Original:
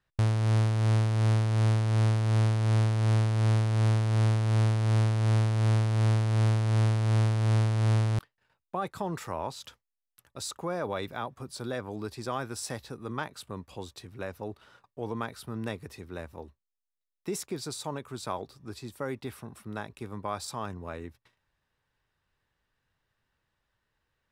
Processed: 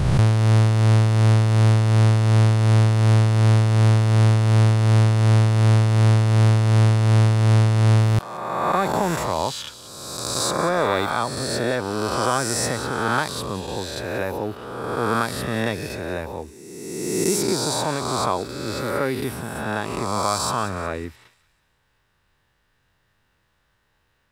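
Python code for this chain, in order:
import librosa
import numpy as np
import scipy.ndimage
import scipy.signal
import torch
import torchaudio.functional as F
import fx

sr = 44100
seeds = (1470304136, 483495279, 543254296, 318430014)

y = fx.spec_swells(x, sr, rise_s=1.72)
y = fx.echo_wet_highpass(y, sr, ms=183, feedback_pct=42, hz=2900.0, wet_db=-13)
y = y * 10.0 ** (8.5 / 20.0)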